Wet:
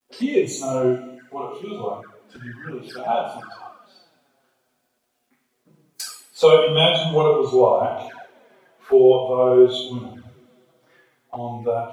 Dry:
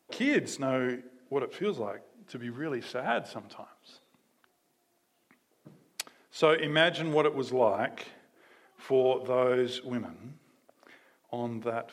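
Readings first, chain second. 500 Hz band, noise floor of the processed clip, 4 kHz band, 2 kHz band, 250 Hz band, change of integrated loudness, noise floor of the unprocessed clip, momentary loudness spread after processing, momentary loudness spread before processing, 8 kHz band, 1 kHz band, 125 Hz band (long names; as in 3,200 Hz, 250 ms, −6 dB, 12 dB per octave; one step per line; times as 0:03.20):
+11.5 dB, −71 dBFS, +12.0 dB, −0.5 dB, +8.0 dB, +11.5 dB, −73 dBFS, 20 LU, 19 LU, +9.5 dB, +9.0 dB, +10.0 dB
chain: coupled-rooms reverb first 0.81 s, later 3.5 s, from −20 dB, DRR −6.5 dB
flanger swept by the level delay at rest 8.6 ms, full sweep at −24.5 dBFS
bit reduction 11 bits
noise reduction from a noise print of the clip's start 12 dB
level +5.5 dB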